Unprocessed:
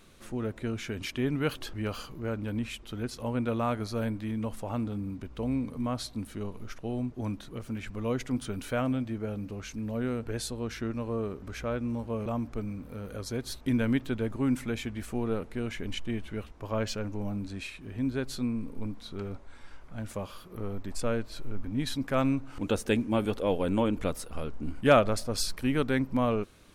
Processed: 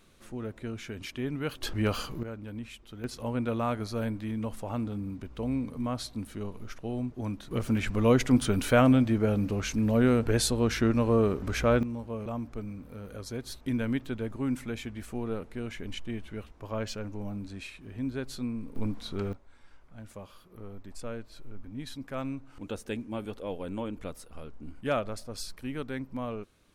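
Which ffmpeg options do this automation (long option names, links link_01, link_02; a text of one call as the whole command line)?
ffmpeg -i in.wav -af "asetnsamples=nb_out_samples=441:pad=0,asendcmd='1.63 volume volume 5.5dB;2.23 volume volume -7dB;3.04 volume volume -0.5dB;7.51 volume volume 8.5dB;11.83 volume volume -3dB;18.76 volume volume 4dB;19.33 volume volume -8.5dB',volume=-4dB" out.wav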